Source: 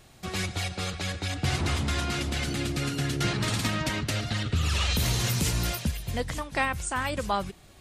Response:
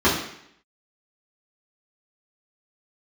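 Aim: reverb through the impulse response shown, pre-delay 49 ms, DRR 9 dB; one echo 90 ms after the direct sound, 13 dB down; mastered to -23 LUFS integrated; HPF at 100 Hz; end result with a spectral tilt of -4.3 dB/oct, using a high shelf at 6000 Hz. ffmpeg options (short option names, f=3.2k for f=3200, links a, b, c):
-filter_complex "[0:a]highpass=100,highshelf=f=6k:g=-4.5,aecho=1:1:90:0.224,asplit=2[a][b];[1:a]atrim=start_sample=2205,adelay=49[c];[b][c]afir=irnorm=-1:irlink=0,volume=-29.5dB[d];[a][d]amix=inputs=2:normalize=0,volume=6dB"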